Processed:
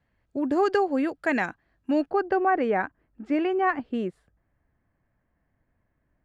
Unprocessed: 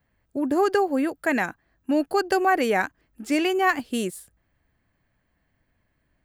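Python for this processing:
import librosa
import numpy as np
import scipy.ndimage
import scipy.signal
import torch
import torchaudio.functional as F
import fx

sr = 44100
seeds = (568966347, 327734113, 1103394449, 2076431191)

y = fx.lowpass(x, sr, hz=fx.steps((0.0, 5200.0), (2.1, 1600.0)), slope=12)
y = F.gain(torch.from_numpy(y), -1.5).numpy()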